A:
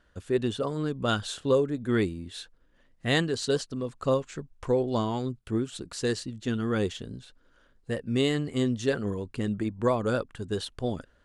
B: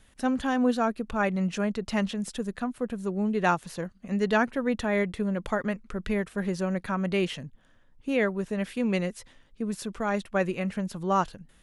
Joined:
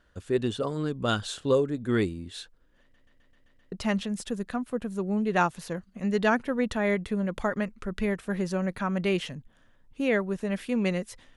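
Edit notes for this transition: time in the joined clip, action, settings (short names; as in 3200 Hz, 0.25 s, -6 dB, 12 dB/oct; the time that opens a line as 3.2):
A
2.81 stutter in place 0.13 s, 7 plays
3.72 switch to B from 1.8 s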